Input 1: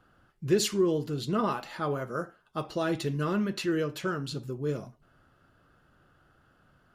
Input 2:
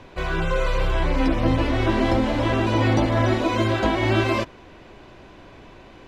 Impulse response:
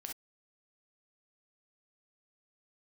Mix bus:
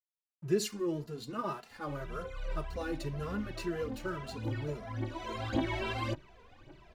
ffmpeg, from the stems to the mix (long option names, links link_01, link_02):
-filter_complex "[0:a]bandreject=frequency=3300:width=7.7,aeval=exprs='sgn(val(0))*max(abs(val(0))-0.00335,0)':channel_layout=same,volume=-4dB,asplit=2[link_01][link_02];[1:a]aphaser=in_gain=1:out_gain=1:delay=2.2:decay=0.66:speed=1.8:type=triangular,adelay=1700,volume=-11.5dB[link_03];[link_02]apad=whole_len=343040[link_04];[link_03][link_04]sidechaincompress=threshold=-46dB:ratio=4:attack=16:release=724[link_05];[link_01][link_05]amix=inputs=2:normalize=0,asplit=2[link_06][link_07];[link_07]adelay=2.6,afreqshift=1.9[link_08];[link_06][link_08]amix=inputs=2:normalize=1"